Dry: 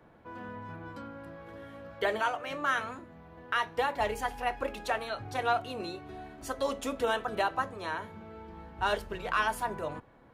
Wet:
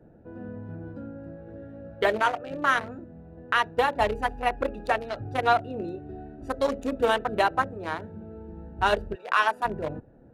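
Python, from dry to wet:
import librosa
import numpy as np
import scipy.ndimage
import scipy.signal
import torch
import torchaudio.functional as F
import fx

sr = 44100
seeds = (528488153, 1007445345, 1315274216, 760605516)

y = fx.wiener(x, sr, points=41)
y = fx.highpass(y, sr, hz=fx.line((9.14, 850.0), (9.63, 320.0)), slope=12, at=(9.14, 9.63), fade=0.02)
y = y * librosa.db_to_amplitude(7.5)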